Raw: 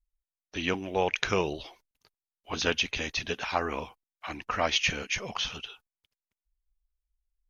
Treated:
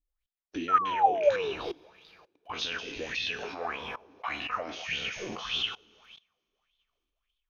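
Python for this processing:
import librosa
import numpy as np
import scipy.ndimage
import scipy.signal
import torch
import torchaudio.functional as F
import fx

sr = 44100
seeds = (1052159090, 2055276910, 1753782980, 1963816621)

y = fx.spec_trails(x, sr, decay_s=0.54)
y = fx.rev_double_slope(y, sr, seeds[0], early_s=0.95, late_s=2.9, knee_db=-18, drr_db=8.0)
y = fx.level_steps(y, sr, step_db=21)
y = fx.dispersion(y, sr, late='highs', ms=73.0, hz=510.0, at=(0.78, 1.36))
y = fx.spec_paint(y, sr, seeds[1], shape='fall', start_s=0.68, length_s=0.85, low_hz=390.0, high_hz=1400.0, level_db=-32.0)
y = fx.bell_lfo(y, sr, hz=1.7, low_hz=290.0, high_hz=3600.0, db=17)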